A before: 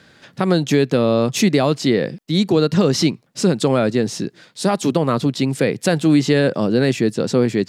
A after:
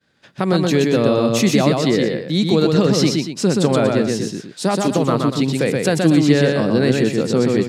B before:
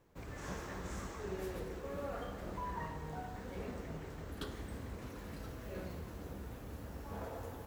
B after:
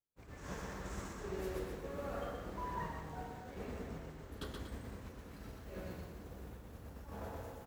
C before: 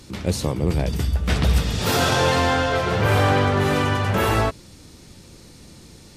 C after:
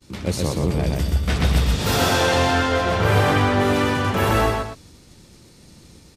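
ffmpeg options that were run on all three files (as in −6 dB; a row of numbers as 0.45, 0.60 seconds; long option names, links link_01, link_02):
-af "agate=range=-33dB:threshold=-40dB:ratio=3:detection=peak,aecho=1:1:125.4|239.1:0.708|0.282,volume=-1dB"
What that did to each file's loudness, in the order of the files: +1.0, −1.0, +0.5 LU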